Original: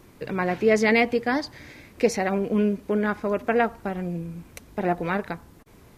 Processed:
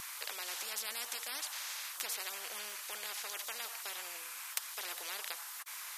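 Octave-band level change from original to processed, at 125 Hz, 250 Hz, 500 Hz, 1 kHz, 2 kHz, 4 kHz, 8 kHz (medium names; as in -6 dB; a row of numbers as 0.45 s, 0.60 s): under -40 dB, under -40 dB, -30.5 dB, -18.5 dB, -14.5 dB, -0.5 dB, +4.0 dB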